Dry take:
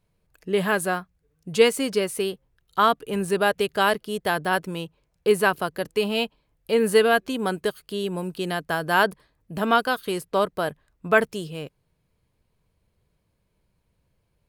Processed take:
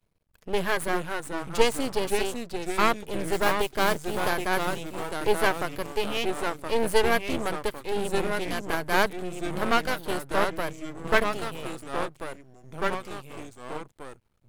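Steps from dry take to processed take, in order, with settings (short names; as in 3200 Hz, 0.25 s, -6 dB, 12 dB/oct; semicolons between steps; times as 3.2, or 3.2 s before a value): 3.32–4.25 modulation noise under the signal 20 dB; echoes that change speed 0.333 s, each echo -2 st, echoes 3, each echo -6 dB; half-wave rectifier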